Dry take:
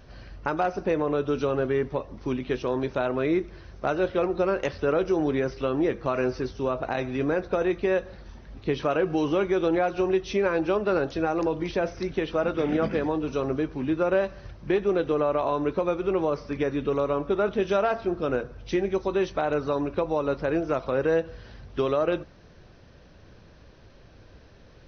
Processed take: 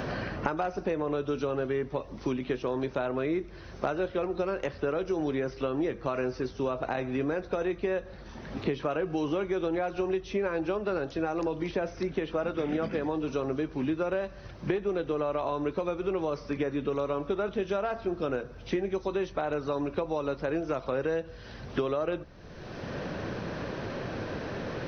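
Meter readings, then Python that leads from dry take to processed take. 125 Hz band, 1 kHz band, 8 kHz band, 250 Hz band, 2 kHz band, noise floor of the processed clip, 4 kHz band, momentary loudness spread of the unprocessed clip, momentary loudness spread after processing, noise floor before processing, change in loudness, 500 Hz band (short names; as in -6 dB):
-3.0 dB, -5.0 dB, n/a, -4.0 dB, -4.5 dB, -46 dBFS, -3.5 dB, 5 LU, 6 LU, -52 dBFS, -5.0 dB, -5.0 dB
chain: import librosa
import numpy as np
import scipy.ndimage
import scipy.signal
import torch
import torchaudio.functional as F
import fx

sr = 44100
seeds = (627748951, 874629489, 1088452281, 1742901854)

y = fx.band_squash(x, sr, depth_pct=100)
y = y * librosa.db_to_amplitude(-5.5)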